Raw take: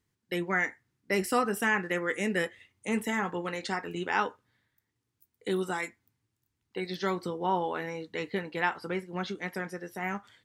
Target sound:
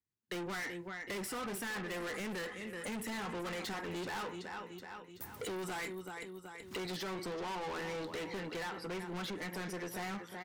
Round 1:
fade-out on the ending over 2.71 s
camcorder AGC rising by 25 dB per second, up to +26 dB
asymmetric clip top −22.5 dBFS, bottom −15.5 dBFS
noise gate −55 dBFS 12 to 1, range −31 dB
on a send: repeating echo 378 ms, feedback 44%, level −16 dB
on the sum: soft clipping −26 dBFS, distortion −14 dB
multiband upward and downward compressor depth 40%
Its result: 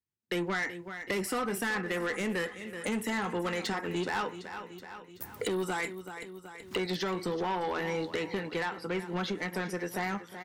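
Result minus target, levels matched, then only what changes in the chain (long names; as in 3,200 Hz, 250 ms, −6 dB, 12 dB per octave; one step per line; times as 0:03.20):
soft clipping: distortion −9 dB
change: soft clipping −38 dBFS, distortion −5 dB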